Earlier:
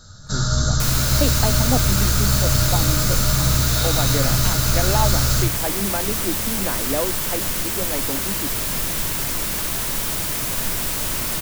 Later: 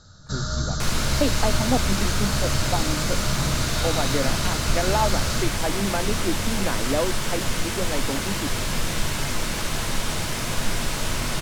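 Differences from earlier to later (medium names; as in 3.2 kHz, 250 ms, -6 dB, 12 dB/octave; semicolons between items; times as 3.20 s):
first sound: send -9.0 dB; second sound: send +9.5 dB; master: add distance through air 59 m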